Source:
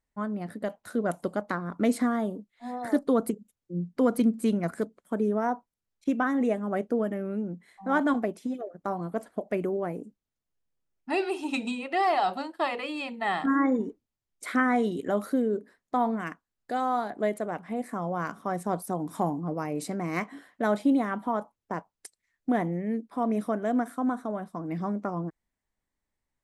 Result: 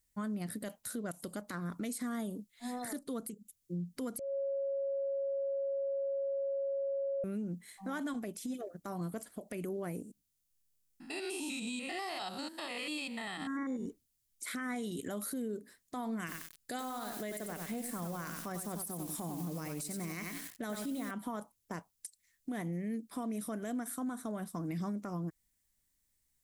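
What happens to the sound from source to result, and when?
0:04.19–0:07.24: beep over 551 Hz −22.5 dBFS
0:10.02–0:13.86: spectrum averaged block by block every 100 ms
0:16.19–0:21.11: feedback echo at a low word length 93 ms, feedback 35%, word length 8 bits, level −7 dB
whole clip: drawn EQ curve 110 Hz 0 dB, 810 Hz −10 dB, 11,000 Hz +14 dB; downward compressor, threshold −36 dBFS; brickwall limiter −33 dBFS; level +2.5 dB

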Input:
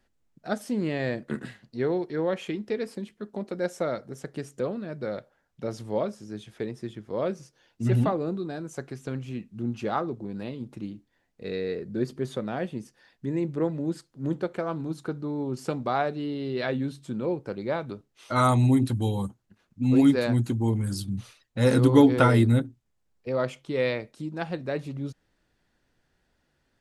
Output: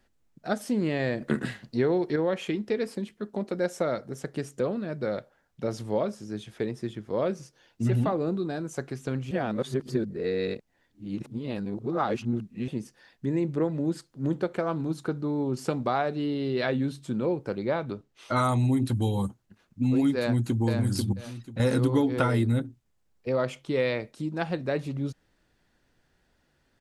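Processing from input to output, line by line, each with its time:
0:01.21–0:02.16: clip gain +5.5 dB
0:09.31–0:12.68: reverse
0:17.59–0:18.37: high-shelf EQ 7,800 Hz −8 dB
0:20.18–0:20.63: delay throw 490 ms, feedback 20%, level −4 dB
0:21.13–0:21.60: downward compressor 2 to 1, threshold −37 dBFS
whole clip: downward compressor 4 to 1, threshold −24 dBFS; level +2.5 dB

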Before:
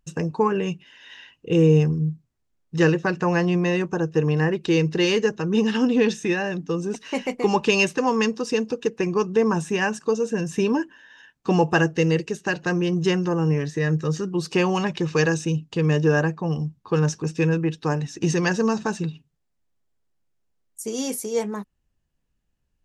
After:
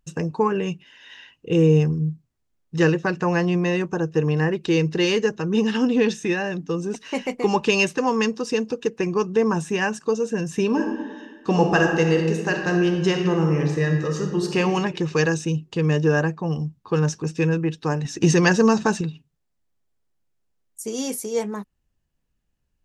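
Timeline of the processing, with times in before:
0:10.66–0:14.58: thrown reverb, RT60 1.4 s, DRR 2.5 dB
0:18.05–0:19.01: clip gain +5 dB

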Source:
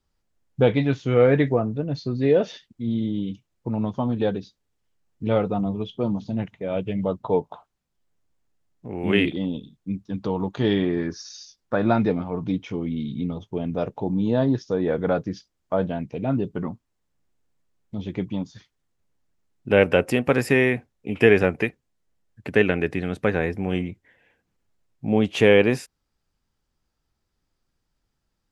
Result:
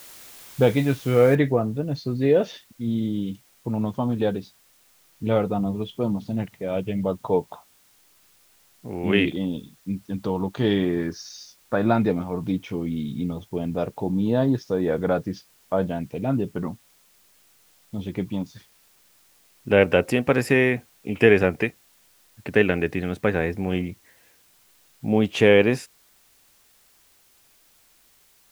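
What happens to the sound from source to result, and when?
0:01.35: noise floor change −45 dB −59 dB

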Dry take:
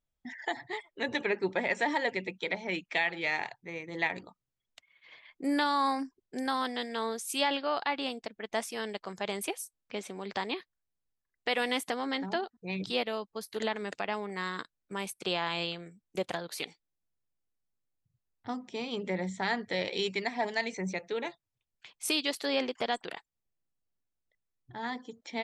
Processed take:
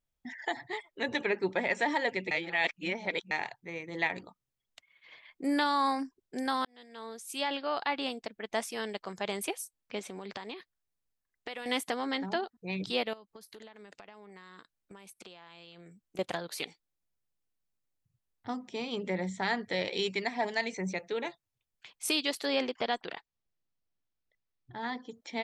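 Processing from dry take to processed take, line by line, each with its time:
0:02.31–0:03.31: reverse
0:06.65–0:07.93: fade in
0:09.99–0:11.66: downward compressor 5 to 1, threshold −37 dBFS
0:13.13–0:16.19: downward compressor 16 to 1, threshold −46 dBFS
0:22.71–0:25.09: low-pass filter 5,700 Hz 24 dB per octave

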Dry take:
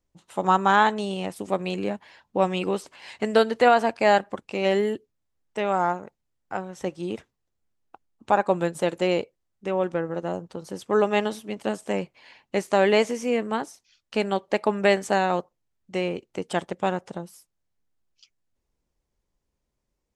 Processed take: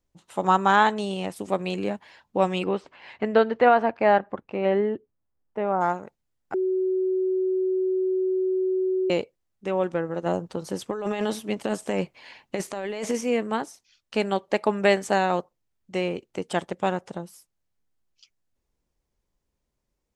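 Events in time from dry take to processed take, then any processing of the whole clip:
0:02.63–0:05.80: low-pass filter 3,000 Hz → 1,200 Hz
0:06.54–0:09.10: beep over 374 Hz −21 dBFS
0:10.26–0:13.21: compressor whose output falls as the input rises −27 dBFS

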